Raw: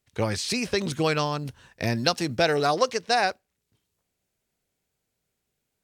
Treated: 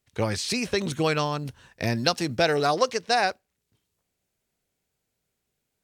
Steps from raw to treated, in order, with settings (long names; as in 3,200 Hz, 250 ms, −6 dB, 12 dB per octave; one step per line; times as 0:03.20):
0:00.66–0:01.46: notch filter 4,900 Hz, Q 9